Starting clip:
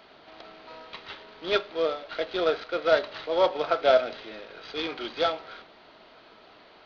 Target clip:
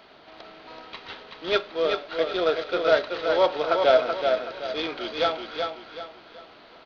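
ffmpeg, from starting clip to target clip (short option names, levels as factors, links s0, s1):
-af "aecho=1:1:379|758|1137|1516:0.562|0.197|0.0689|0.0241,volume=1.19"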